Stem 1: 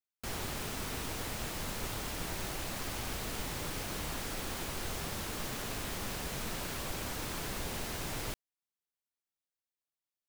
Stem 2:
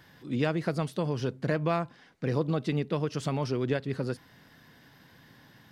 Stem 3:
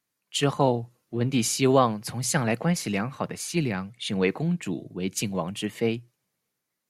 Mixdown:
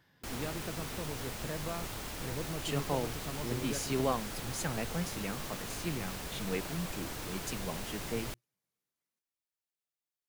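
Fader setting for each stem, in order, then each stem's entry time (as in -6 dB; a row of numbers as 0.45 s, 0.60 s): -2.5 dB, -12.0 dB, -12.0 dB; 0.00 s, 0.00 s, 2.30 s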